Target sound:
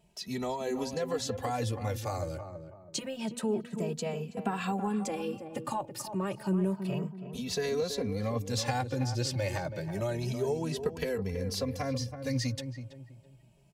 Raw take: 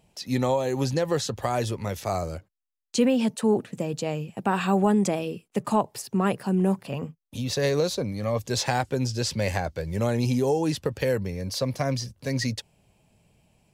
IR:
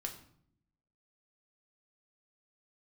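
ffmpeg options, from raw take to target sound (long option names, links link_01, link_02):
-filter_complex "[0:a]acompressor=threshold=-24dB:ratio=4,asplit=2[link_01][link_02];[link_02]adelay=327,lowpass=frequency=1100:poles=1,volume=-8dB,asplit=2[link_03][link_04];[link_04]adelay=327,lowpass=frequency=1100:poles=1,volume=0.36,asplit=2[link_05][link_06];[link_06]adelay=327,lowpass=frequency=1100:poles=1,volume=0.36,asplit=2[link_07][link_08];[link_08]adelay=327,lowpass=frequency=1100:poles=1,volume=0.36[link_09];[link_01][link_03][link_05][link_07][link_09]amix=inputs=5:normalize=0,asplit=2[link_10][link_11];[link_11]adelay=2.7,afreqshift=0.29[link_12];[link_10][link_12]amix=inputs=2:normalize=1,volume=-1dB"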